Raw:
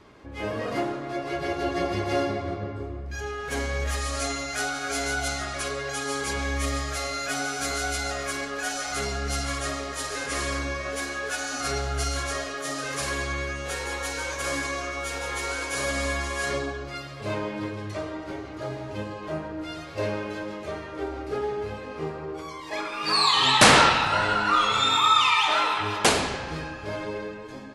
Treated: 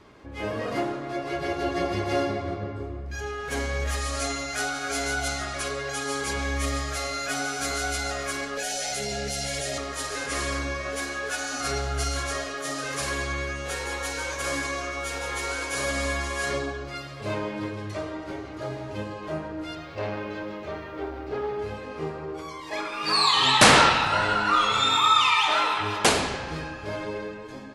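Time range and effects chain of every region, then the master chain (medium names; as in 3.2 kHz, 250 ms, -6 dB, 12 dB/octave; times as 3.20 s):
8.57–9.78 s: static phaser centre 310 Hz, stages 6 + level flattener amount 100%
19.75–21.59 s: low-pass 4.5 kHz + word length cut 12-bit, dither none + transformer saturation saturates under 590 Hz
whole clip: none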